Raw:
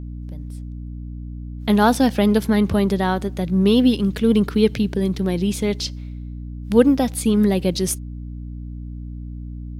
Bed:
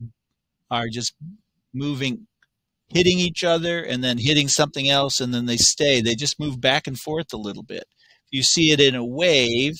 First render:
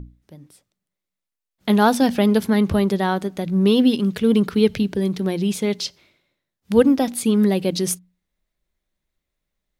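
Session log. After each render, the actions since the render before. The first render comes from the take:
mains-hum notches 60/120/180/240/300 Hz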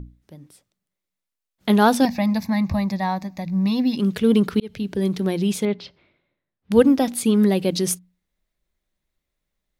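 0:02.05–0:03.97: phaser with its sweep stopped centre 2,100 Hz, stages 8
0:04.60–0:05.05: fade in
0:05.65–0:06.72: high-frequency loss of the air 370 metres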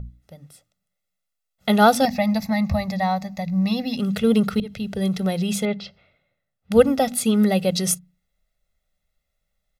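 mains-hum notches 50/100/150/200/250/300 Hz
comb filter 1.5 ms, depth 77%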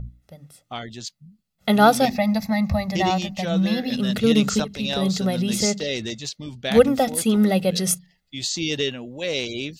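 mix in bed −9 dB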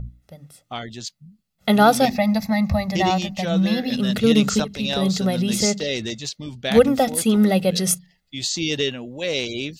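level +1.5 dB
brickwall limiter −3 dBFS, peak gain reduction 2.5 dB

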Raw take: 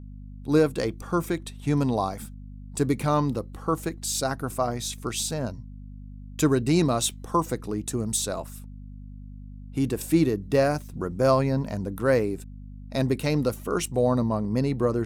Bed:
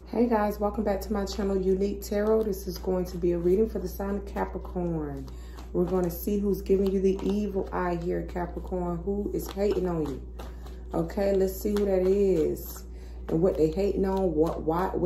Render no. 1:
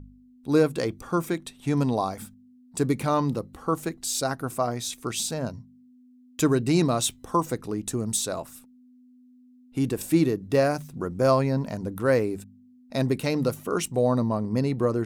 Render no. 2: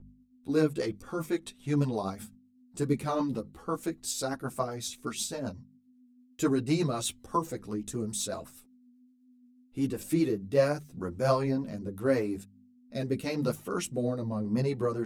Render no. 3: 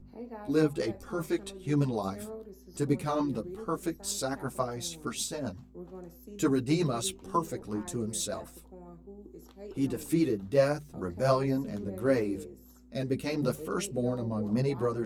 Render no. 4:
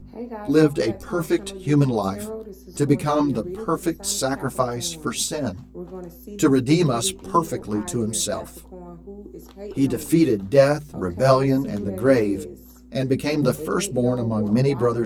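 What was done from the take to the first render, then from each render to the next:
hum removal 50 Hz, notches 4
rotating-speaker cabinet horn 8 Hz, later 0.85 Hz, at 0:10.02; string-ensemble chorus
mix in bed −19 dB
level +9.5 dB

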